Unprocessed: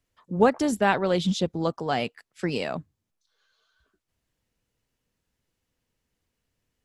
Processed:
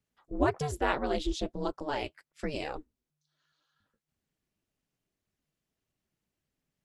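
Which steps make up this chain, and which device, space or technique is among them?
alien voice (ring modulator 150 Hz; flange 1.7 Hz, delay 1.3 ms, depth 5.8 ms, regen -50%)

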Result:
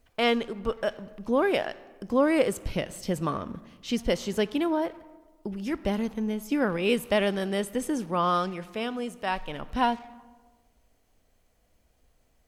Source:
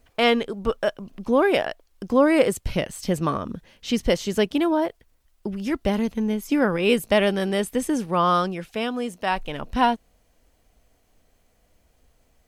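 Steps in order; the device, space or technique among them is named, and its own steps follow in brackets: saturated reverb return (on a send at -12 dB: reverberation RT60 1.1 s, pre-delay 21 ms + saturation -26 dBFS, distortion -6 dB); on the sum: trim -5 dB

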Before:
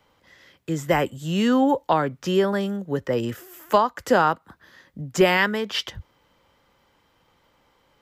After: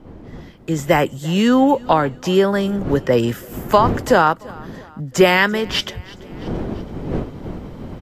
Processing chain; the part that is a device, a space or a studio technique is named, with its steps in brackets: feedback delay 337 ms, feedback 48%, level -23.5 dB; smartphone video outdoors (wind noise 300 Hz -37 dBFS; level rider gain up to 13 dB; trim -1 dB; AAC 64 kbps 32 kHz)

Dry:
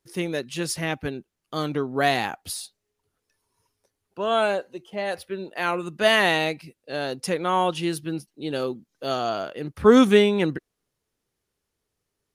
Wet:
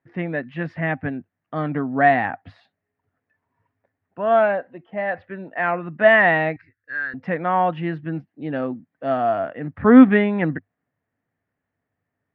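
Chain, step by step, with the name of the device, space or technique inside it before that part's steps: bass cabinet (cabinet simulation 84–2200 Hz, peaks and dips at 100 Hz +9 dB, 160 Hz +5 dB, 260 Hz +8 dB, 390 Hz -7 dB, 690 Hz +8 dB, 1.8 kHz +9 dB); 6.56–7.14 s: FFT filter 110 Hz 0 dB, 160 Hz -29 dB, 370 Hz -12 dB, 700 Hz -27 dB, 1.6 kHz +8 dB, 3 kHz -14 dB, 4.3 kHz +3 dB

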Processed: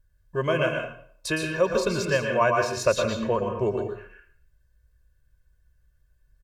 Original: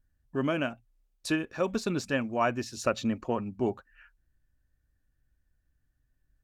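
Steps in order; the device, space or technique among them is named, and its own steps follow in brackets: microphone above a desk (comb 1.9 ms, depth 86%; reverberation RT60 0.60 s, pre-delay 109 ms, DRR 2 dB); trim +2.5 dB

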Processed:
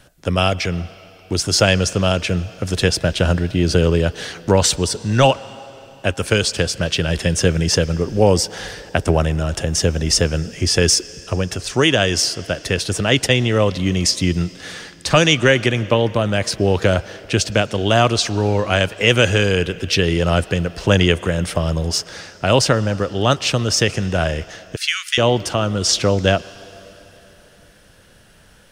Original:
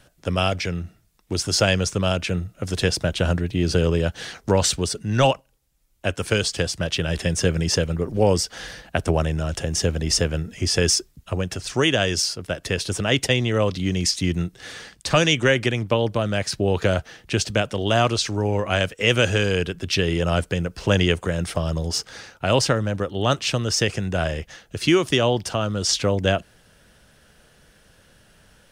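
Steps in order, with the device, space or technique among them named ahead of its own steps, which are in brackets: filtered reverb send (on a send: high-pass 320 Hz 6 dB/octave + low-pass 6.7 kHz + reverberation RT60 3.5 s, pre-delay 104 ms, DRR 18 dB); 24.76–25.18 s: on the sum: steep high-pass 1.4 kHz 48 dB/octave; trim +4.5 dB

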